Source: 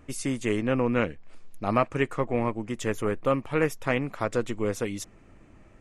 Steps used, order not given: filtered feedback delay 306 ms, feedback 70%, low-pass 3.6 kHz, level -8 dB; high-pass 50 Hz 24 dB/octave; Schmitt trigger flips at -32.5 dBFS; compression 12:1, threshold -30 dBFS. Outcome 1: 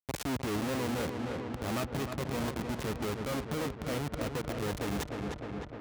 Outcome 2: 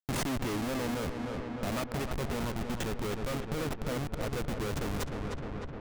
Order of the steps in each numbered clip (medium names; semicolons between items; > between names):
Schmitt trigger > filtered feedback delay > compression > high-pass; high-pass > Schmitt trigger > filtered feedback delay > compression